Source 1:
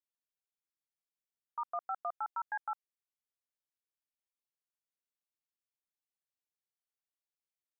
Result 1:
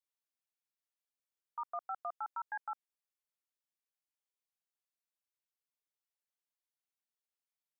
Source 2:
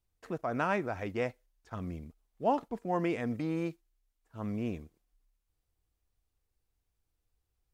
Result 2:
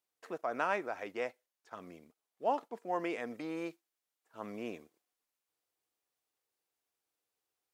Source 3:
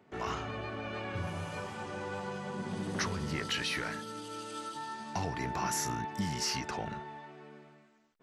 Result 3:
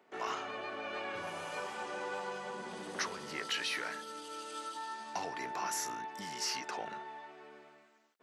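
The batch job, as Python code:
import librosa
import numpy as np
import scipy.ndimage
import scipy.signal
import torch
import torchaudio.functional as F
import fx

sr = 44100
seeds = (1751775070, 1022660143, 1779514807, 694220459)

y = scipy.signal.sosfilt(scipy.signal.butter(2, 400.0, 'highpass', fs=sr, output='sos'), x)
y = fx.rider(y, sr, range_db=4, speed_s=2.0)
y = y * 10.0 ** (-2.0 / 20.0)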